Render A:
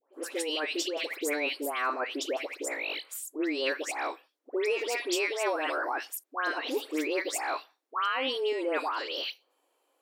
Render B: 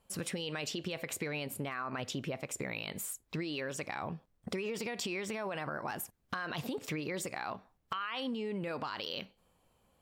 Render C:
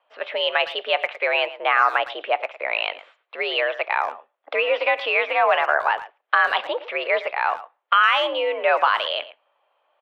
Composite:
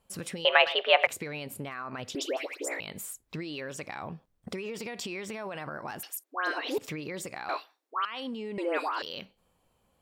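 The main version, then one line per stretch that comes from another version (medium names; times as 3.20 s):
B
0.45–1.07 s: from C
2.15–2.80 s: from A
6.03–6.78 s: from A
7.49–8.05 s: from A
8.58–9.02 s: from A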